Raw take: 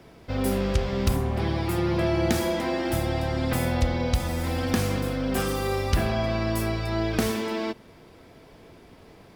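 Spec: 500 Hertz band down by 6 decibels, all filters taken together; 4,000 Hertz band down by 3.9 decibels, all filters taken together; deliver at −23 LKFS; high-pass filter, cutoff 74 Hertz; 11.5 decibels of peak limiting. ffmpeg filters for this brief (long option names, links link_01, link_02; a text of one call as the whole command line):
ffmpeg -i in.wav -af "highpass=74,equalizer=frequency=500:width_type=o:gain=-8.5,equalizer=frequency=4000:width_type=o:gain=-5,volume=10dB,alimiter=limit=-14dB:level=0:latency=1" out.wav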